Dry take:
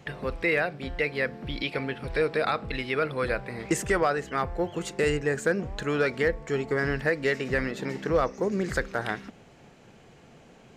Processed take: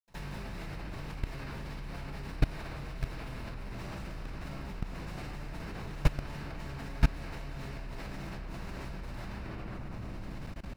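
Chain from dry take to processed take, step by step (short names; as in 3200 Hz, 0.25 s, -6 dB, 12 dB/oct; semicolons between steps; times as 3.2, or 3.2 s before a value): spectral contrast lowered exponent 0.11; RIAA curve playback; notch 3300 Hz, Q 14; de-hum 76.3 Hz, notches 27; compressor 16:1, threshold -31 dBFS, peak gain reduction 13.5 dB; reverb RT60 2.9 s, pre-delay 77 ms; level quantiser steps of 22 dB; bell 410 Hz -3 dB 0.77 oct; gain +4.5 dB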